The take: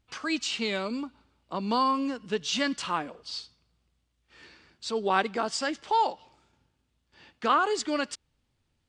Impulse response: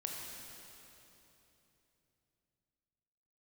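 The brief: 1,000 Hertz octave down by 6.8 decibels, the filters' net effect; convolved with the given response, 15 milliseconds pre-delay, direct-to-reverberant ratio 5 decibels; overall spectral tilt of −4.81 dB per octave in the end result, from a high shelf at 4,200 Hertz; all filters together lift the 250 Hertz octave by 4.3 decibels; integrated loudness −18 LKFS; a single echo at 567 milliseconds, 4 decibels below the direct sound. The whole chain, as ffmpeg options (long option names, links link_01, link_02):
-filter_complex "[0:a]equalizer=frequency=250:width_type=o:gain=5.5,equalizer=frequency=1000:width_type=o:gain=-8,highshelf=frequency=4200:gain=-8,aecho=1:1:567:0.631,asplit=2[link_01][link_02];[1:a]atrim=start_sample=2205,adelay=15[link_03];[link_02][link_03]afir=irnorm=-1:irlink=0,volume=-5.5dB[link_04];[link_01][link_04]amix=inputs=2:normalize=0,volume=10.5dB"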